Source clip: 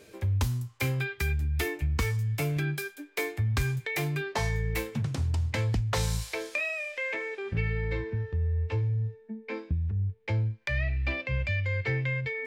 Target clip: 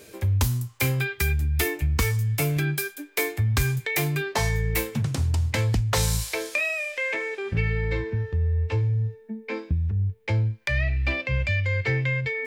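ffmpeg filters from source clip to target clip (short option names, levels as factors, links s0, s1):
-af "highshelf=f=7800:g=10,volume=1.68"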